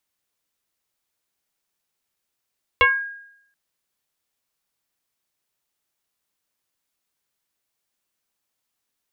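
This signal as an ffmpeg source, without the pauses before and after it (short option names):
-f lavfi -i "aevalsrc='0.335*pow(10,-3*t/0.75)*sin(2*PI*1630*t+2.4*pow(10,-3*t/0.35)*sin(2*PI*0.35*1630*t))':d=0.73:s=44100"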